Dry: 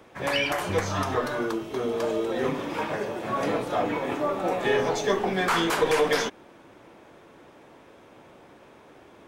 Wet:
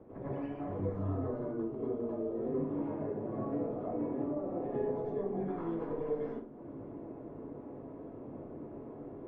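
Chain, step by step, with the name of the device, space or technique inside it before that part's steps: television next door (compressor 4:1, threshold -41 dBFS, peak gain reduction 19 dB; LPF 490 Hz 12 dB/oct; reverb RT60 0.40 s, pre-delay 89 ms, DRR -7.5 dB)

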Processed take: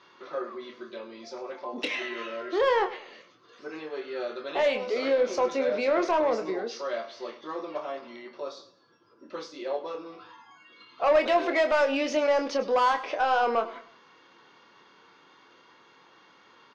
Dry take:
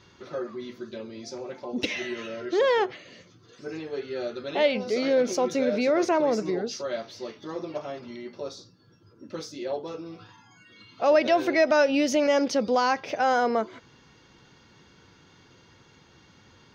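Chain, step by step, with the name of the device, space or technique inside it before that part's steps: intercom (BPF 380–4000 Hz; bell 1100 Hz +7 dB 0.39 oct; soft clip -17 dBFS, distortion -15 dB; doubler 26 ms -7 dB); feedback echo 0.102 s, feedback 35%, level -16 dB

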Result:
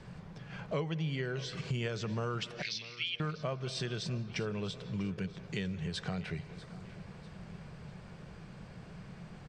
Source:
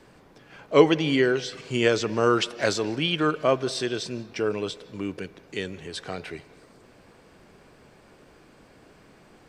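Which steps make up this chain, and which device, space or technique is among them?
2.62–3.2 elliptic band-pass 2100–5600 Hz; jukebox (LPF 6900 Hz 12 dB/oct; resonant low shelf 220 Hz +7.5 dB, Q 3; compressor 5:1, threshold -34 dBFS, peak gain reduction 21 dB); feedback echo 0.645 s, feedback 44%, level -18 dB

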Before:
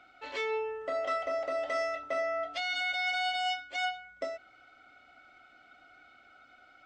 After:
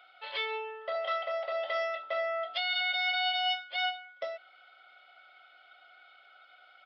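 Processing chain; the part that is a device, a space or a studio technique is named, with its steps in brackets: 0.95–1.52 HPF 430 Hz; musical greeting card (downsampling 11025 Hz; HPF 510 Hz 24 dB/oct; bell 3300 Hz +10 dB 0.34 oct)

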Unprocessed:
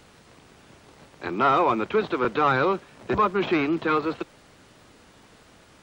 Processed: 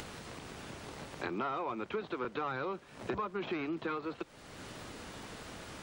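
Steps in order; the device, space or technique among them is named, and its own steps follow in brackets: upward and downward compression (upward compressor, threshold -40 dBFS; compressor 6:1, threshold -36 dBFS, peak gain reduction 18 dB); gain +1 dB

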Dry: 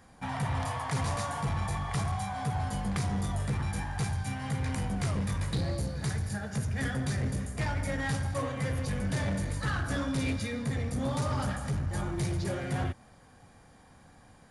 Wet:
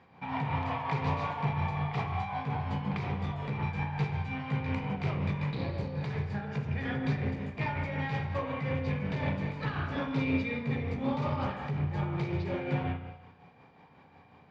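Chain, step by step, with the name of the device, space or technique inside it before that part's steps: combo amplifier with spring reverb and tremolo (spring tank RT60 1 s, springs 34/57 ms, chirp 65 ms, DRR 2.5 dB; tremolo 5.5 Hz, depth 42%; speaker cabinet 100–4100 Hz, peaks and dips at 150 Hz +6 dB, 420 Hz +7 dB, 920 Hz +7 dB, 1600 Hz -3 dB, 2400 Hz +9 dB); gain -2.5 dB

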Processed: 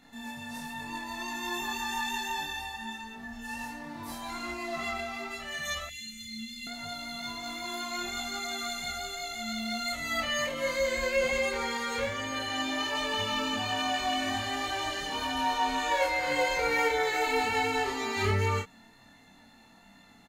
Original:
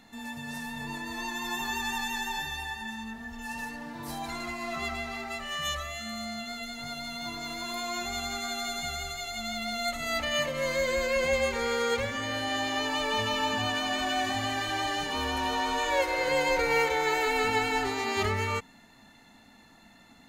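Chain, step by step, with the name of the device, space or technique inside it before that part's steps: double-tracked vocal (doubler 31 ms -2 dB; chorus 1.3 Hz, delay 20 ms, depth 2.1 ms); 5.89–6.67 inverse Chebyshev band-stop 500–1100 Hz, stop band 60 dB

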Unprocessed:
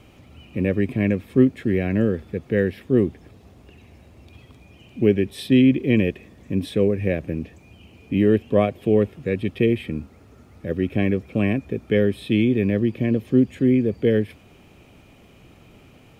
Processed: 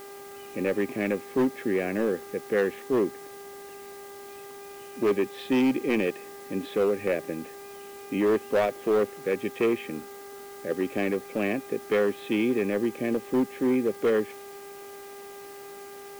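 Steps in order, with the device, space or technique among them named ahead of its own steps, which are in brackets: aircraft radio (BPF 350–2500 Hz; hard clip -18.5 dBFS, distortion -12 dB; buzz 400 Hz, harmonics 5, -44 dBFS -7 dB/oct; white noise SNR 23 dB)

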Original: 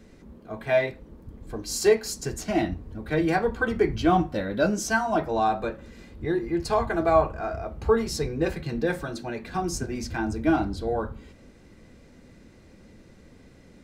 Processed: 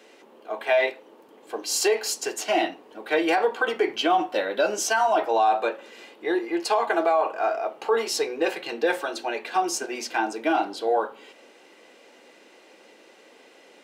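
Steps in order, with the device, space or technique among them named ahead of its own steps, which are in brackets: laptop speaker (HPF 370 Hz 24 dB/oct; bell 830 Hz +5.5 dB 0.52 oct; bell 2900 Hz +9 dB 0.48 oct; limiter -17 dBFS, peak gain reduction 11 dB); gain +4.5 dB

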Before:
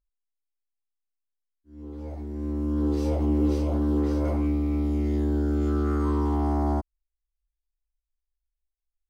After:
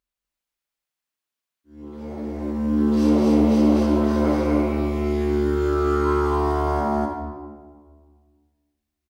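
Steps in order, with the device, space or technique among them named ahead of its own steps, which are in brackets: stadium PA (HPF 200 Hz 6 dB/oct; bell 2100 Hz +3.5 dB 2.2 oct; loudspeakers at several distances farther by 54 m -11 dB, 85 m -1 dB; reverb RT60 1.7 s, pre-delay 28 ms, DRR 1 dB); gain +3.5 dB

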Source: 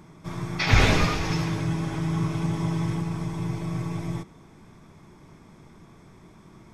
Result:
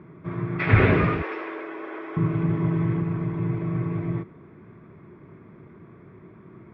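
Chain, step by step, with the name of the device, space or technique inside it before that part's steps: 1.22–2.17 inverse Chebyshev high-pass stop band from 150 Hz, stop band 50 dB; bass cabinet (speaker cabinet 88–2200 Hz, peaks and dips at 110 Hz +4 dB, 380 Hz +6 dB, 830 Hz -9 dB); gain +2.5 dB

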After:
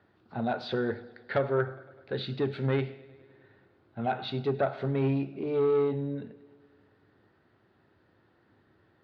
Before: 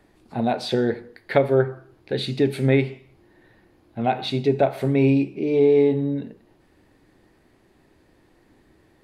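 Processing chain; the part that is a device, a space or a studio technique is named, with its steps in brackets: analogue delay pedal into a guitar amplifier (analogue delay 0.102 s, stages 4096, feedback 73%, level -23.5 dB; tube stage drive 11 dB, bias 0.2; speaker cabinet 100–4200 Hz, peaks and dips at 100 Hz +9 dB, 290 Hz -4 dB, 1400 Hz +9 dB, 2300 Hz -5 dB); gain -6.5 dB

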